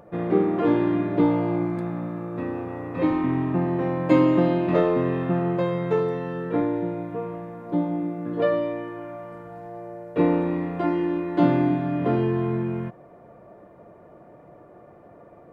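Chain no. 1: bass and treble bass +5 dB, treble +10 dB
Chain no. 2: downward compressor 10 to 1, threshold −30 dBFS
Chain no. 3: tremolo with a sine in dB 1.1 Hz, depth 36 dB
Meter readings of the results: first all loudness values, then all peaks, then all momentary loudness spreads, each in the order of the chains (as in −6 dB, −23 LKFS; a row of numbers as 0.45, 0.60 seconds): −22.0, −34.5, −32.0 LKFS; −4.0, −20.5, −12.5 dBFS; 13, 16, 21 LU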